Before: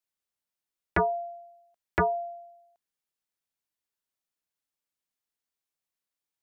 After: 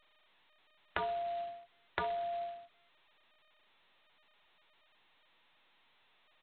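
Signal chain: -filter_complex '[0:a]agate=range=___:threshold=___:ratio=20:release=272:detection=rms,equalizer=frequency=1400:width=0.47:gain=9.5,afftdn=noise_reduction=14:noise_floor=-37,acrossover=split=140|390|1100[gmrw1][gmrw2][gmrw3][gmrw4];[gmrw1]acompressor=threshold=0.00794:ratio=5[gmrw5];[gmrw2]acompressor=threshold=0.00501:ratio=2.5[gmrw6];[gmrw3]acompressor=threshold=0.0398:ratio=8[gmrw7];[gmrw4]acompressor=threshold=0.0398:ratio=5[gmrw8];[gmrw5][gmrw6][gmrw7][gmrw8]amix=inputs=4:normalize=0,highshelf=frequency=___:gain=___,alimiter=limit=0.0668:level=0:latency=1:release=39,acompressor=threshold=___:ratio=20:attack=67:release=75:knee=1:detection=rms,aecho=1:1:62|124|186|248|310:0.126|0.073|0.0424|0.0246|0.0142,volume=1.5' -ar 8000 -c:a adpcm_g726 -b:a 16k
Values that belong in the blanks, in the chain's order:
0.0447, 0.002, 2900, -6, 0.01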